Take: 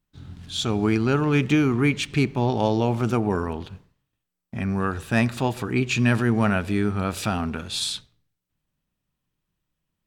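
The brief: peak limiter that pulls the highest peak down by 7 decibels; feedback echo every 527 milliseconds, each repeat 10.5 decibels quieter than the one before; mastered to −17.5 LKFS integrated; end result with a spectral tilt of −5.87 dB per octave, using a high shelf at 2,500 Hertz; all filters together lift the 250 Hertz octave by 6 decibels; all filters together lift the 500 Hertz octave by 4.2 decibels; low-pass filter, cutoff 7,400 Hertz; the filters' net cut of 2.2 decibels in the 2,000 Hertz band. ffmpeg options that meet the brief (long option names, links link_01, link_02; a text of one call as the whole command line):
ffmpeg -i in.wav -af "lowpass=7400,equalizer=frequency=250:width_type=o:gain=6.5,equalizer=frequency=500:width_type=o:gain=3,equalizer=frequency=2000:width_type=o:gain=-5.5,highshelf=frequency=2500:gain=4.5,alimiter=limit=-11.5dB:level=0:latency=1,aecho=1:1:527|1054|1581:0.299|0.0896|0.0269,volume=4.5dB" out.wav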